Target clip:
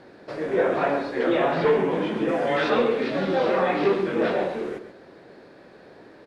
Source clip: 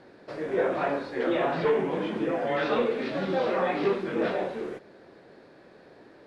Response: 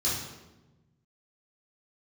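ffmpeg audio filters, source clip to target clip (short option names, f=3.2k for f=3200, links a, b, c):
-filter_complex "[0:a]asettb=1/sr,asplit=3[a][b][c];[a]atrim=end=2.284[d];[b]atrim=start=2.28:end=2.7,asetpts=PTS-STARTPTS,afade=t=in:d=0.004:c=qsin,afade=t=out:st=0.416:d=0.004:c=qsin,highshelf=f=4.7k:g=7.5[e];[c]atrim=start=2.696[f];[d][e]acrossfade=d=0.004:c1=hsin:c2=qsin[g];[g][f]acrossfade=d=0.004:c1=qsin:c2=hsin,asplit=2[h][i];[i]adelay=128.3,volume=-10dB,highshelf=f=4k:g=-2.89[j];[h][j]amix=inputs=2:normalize=0,volume=4dB"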